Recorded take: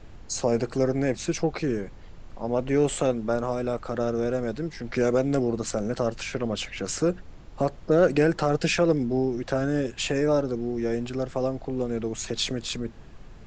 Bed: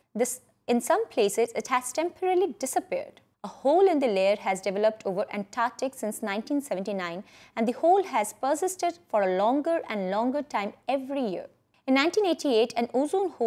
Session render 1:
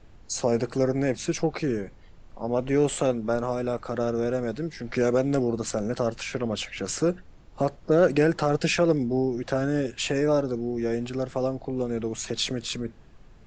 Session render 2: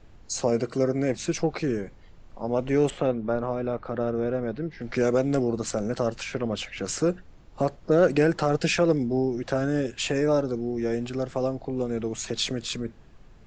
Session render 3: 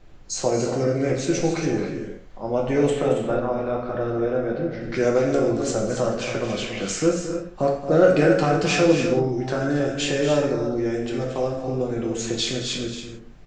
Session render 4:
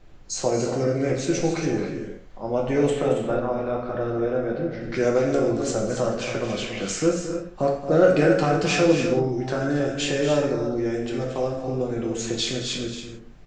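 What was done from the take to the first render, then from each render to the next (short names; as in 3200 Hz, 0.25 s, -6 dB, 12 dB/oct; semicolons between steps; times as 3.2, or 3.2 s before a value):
noise print and reduce 6 dB
0.5–1.1 notch comb 850 Hz; 2.9–4.81 air absorption 260 m; 6.24–6.81 high shelf 5200 Hz -5.5 dB
loudspeakers at several distances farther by 77 m -11 dB, 95 m -9 dB; non-linear reverb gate 0.2 s falling, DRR -0.5 dB
gain -1 dB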